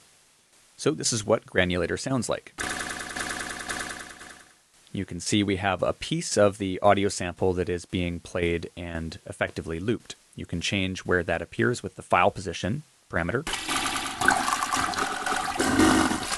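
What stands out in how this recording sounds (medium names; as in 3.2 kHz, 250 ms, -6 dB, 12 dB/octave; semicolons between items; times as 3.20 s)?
a quantiser's noise floor 10-bit, dither triangular; tremolo saw down 1.9 Hz, depth 60%; AAC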